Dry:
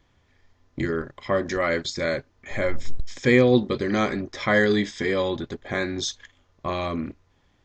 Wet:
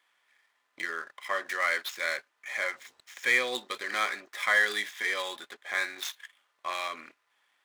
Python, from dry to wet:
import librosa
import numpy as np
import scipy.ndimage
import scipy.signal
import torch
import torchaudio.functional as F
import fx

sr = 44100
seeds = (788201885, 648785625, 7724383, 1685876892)

p1 = scipy.signal.medfilt(x, 9)
p2 = scipy.signal.sosfilt(scipy.signal.butter(2, 1400.0, 'highpass', fs=sr, output='sos'), p1)
p3 = np.clip(p2, -10.0 ** (-23.0 / 20.0), 10.0 ** (-23.0 / 20.0))
y = p2 + F.gain(torch.from_numpy(p3), -7.5).numpy()